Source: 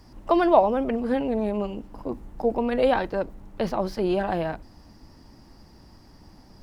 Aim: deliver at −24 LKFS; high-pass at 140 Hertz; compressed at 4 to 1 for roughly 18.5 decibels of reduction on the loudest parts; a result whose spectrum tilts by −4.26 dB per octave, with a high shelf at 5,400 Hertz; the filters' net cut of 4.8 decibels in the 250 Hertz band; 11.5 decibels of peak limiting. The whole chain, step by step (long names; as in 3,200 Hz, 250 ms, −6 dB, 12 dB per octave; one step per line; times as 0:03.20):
high-pass filter 140 Hz
parametric band 250 Hz −6 dB
high-shelf EQ 5,400 Hz +4.5 dB
downward compressor 4 to 1, threshold −36 dBFS
level +17 dB
brickwall limiter −13.5 dBFS